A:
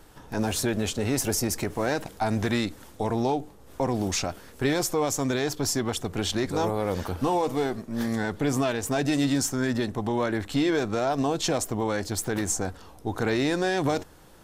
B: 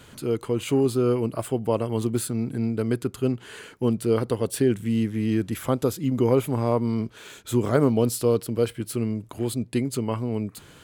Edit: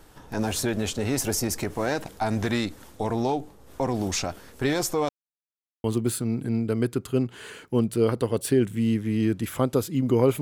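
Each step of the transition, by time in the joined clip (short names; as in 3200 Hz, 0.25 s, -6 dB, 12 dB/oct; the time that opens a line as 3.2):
A
5.09–5.84 mute
5.84 switch to B from 1.93 s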